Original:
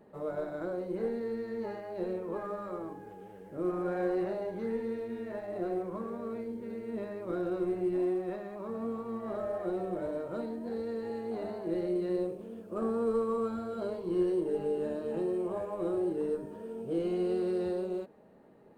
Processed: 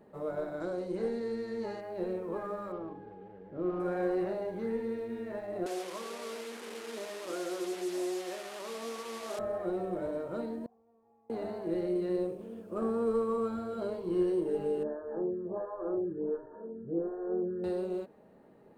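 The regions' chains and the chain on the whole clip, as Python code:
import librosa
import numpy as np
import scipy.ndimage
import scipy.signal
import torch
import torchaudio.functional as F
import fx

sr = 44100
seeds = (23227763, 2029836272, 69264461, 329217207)

y = fx.chain(x, sr, fx.lowpass(hz=5700.0, slope=12),
    fx.bass_treble(bass_db=0, treble_db=15), at=(0.6, 1.81))
y = fx.chain(y, sr, fx.median_filter(points=15),
    fx.air_absorb(metres=310.0), at=(2.72, 3.8))
y = fx.chain(y, sr, fx.delta_mod(bps=64000, step_db=-37.0),
    fx.highpass(hz=410.0, slope=12), at=(5.66, 9.39))
y = fx.chain(y, sr, fx.formant_cascade(vowel='a'),
    fx.peak_eq(hz=660.0, db=-15.0, octaves=1.9), at=(10.66, 11.3))
y = fx.chain(y, sr, fx.brickwall_lowpass(high_hz=1800.0),
    fx.stagger_phaser(hz=1.4), at=(14.83, 17.64))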